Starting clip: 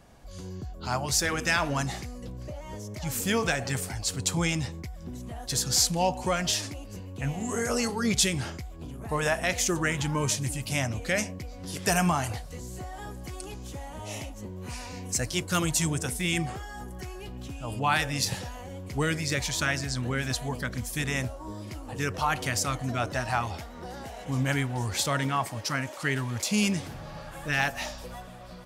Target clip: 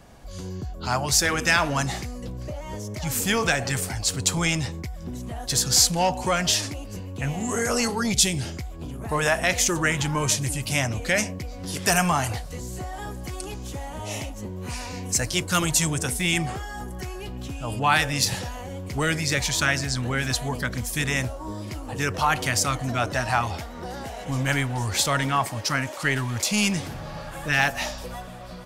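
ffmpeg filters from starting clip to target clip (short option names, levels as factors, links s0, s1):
-filter_complex "[0:a]asettb=1/sr,asplit=3[s0][s1][s2];[s0]atrim=end=8.034[s3];[s1]atrim=start=8.03:end=8.57,asetpts=PTS-STARTPTS,afade=t=in:d=0.004:c=qsin,afade=t=out:st=0.536:d=0.004:c=qsin,equalizer=f=1200:w=0.96:g=-12[s4];[s2]atrim=start=8.566[s5];[s3][s4]acrossfade=d=0.004:c1=hsin:c2=qsin[s6];[s6][s5]acrossfade=d=0.004:c1=qsin:c2=hsin,acrossover=split=760|7100[s7][s8][s9];[s7]asoftclip=type=tanh:threshold=0.0447[s10];[s10][s8][s9]amix=inputs=3:normalize=0,volume=1.88"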